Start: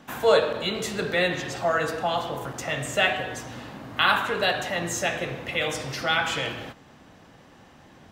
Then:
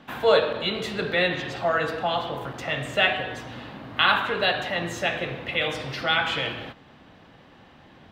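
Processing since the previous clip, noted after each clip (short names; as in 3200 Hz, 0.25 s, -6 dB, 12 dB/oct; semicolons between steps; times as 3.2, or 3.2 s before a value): resonant high shelf 5000 Hz -9 dB, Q 1.5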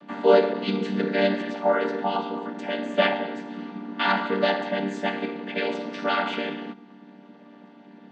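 chord vocoder minor triad, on G3; gain +1.5 dB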